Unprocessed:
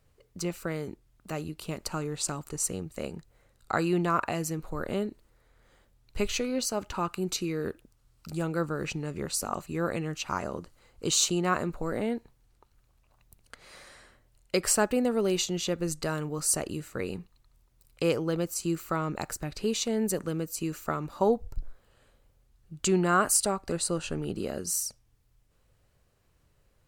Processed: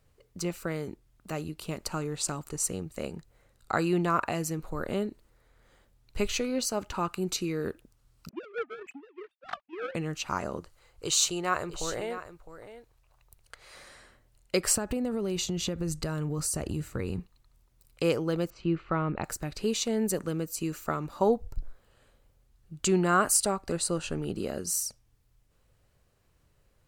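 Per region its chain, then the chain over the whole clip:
8.29–9.95 sine-wave speech + power-law curve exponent 2
10.6–13.76 bell 220 Hz -15 dB 0.84 oct + echo 0.659 s -13 dB
14.76–17.2 bell 65 Hz +13.5 dB 2.7 oct + compressor 10:1, threshold -26 dBFS
18.5–19.24 LPF 3200 Hz 24 dB/oct + low shelf 160 Hz +5.5 dB
whole clip: dry

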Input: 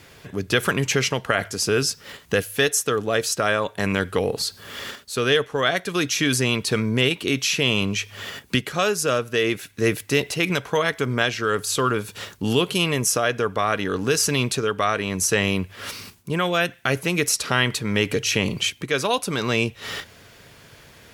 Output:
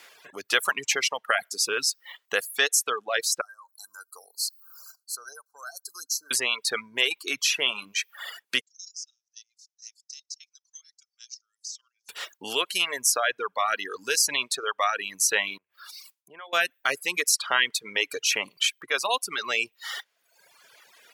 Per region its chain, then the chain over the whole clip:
3.41–6.31 brick-wall FIR band-stop 1600–4000 Hz + differentiator
8.61–12.09 level quantiser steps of 10 dB + Butterworth band-pass 5700 Hz, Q 3.5
15.58–16.53 compressor 12:1, threshold -34 dBFS + three-band expander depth 70%
whole clip: reverb removal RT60 1.5 s; HPF 720 Hz 12 dB/oct; reverb removal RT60 0.82 s

